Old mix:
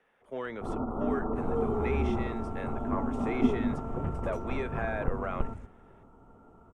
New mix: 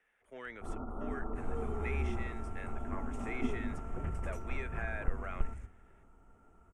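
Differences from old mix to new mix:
speech: send off
second sound: send +11.5 dB
master: add graphic EQ with 10 bands 125 Hz −11 dB, 250 Hz −7 dB, 500 Hz −8 dB, 1,000 Hz −9 dB, 2,000 Hz +4 dB, 4,000 Hz −8 dB, 8,000 Hz +4 dB

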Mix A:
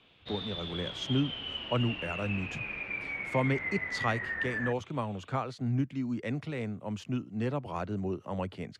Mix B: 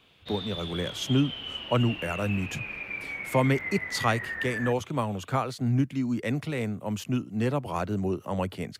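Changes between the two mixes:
speech +5.0 dB
master: remove high-frequency loss of the air 80 metres

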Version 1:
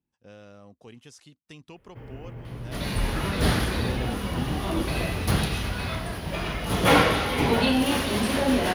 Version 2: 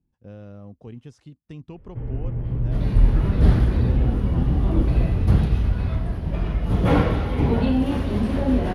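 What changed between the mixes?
second sound −5.5 dB
master: add spectral tilt −4 dB per octave

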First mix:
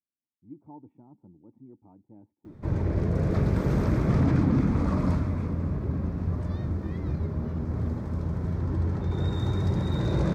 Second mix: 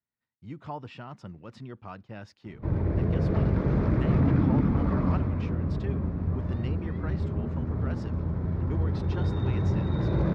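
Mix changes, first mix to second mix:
speech: remove formant resonators in series u
master: add high-frequency loss of the air 240 metres

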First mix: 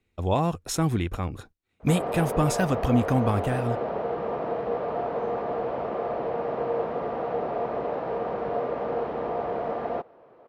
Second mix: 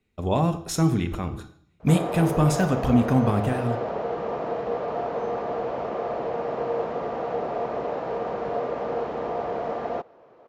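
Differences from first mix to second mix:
background: remove high-frequency loss of the air 160 metres
reverb: on, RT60 0.60 s

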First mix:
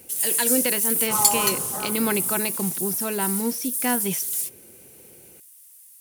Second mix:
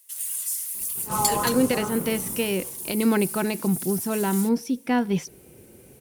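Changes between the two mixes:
speech: entry +1.05 s
master: add spectral tilt −2 dB per octave

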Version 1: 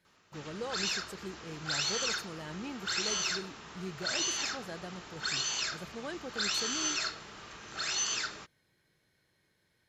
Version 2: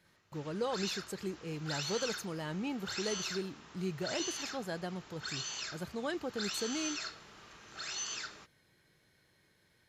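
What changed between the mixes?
speech +4.0 dB
background −7.0 dB

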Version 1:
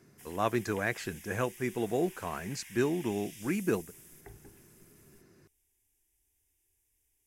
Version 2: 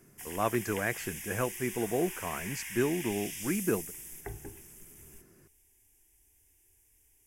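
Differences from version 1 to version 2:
background +10.0 dB
master: add parametric band 4,000 Hz −9.5 dB 0.37 octaves

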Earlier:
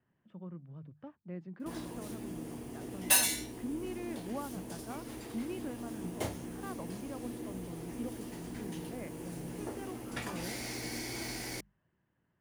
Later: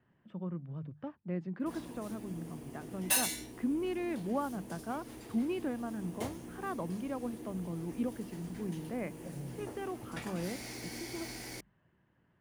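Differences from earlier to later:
speech +6.5 dB
background −4.0 dB

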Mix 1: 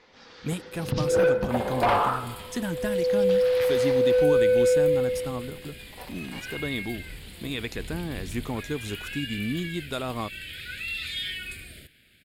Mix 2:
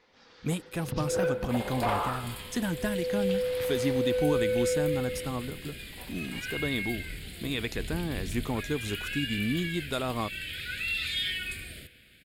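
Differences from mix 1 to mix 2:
first sound −8.0 dB
reverb: on, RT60 1.7 s

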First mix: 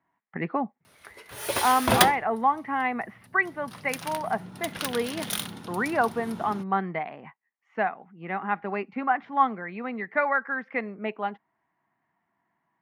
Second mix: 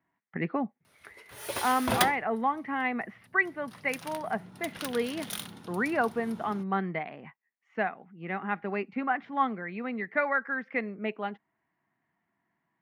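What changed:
speech: add parametric band 920 Hz −6.5 dB 1.1 octaves
background −6.5 dB

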